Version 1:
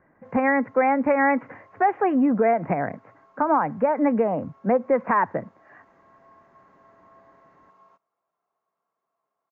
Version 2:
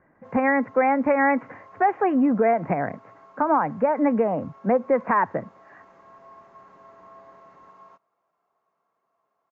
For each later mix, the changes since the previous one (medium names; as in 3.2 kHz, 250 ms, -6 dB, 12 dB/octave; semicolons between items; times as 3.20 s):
background +6.5 dB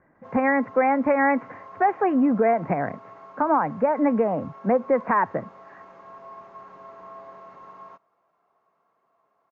background +6.0 dB; master: add distance through air 77 m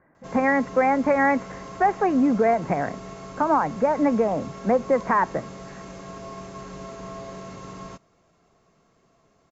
background: remove band-pass filter 1 kHz, Q 1.8; master: remove distance through air 77 m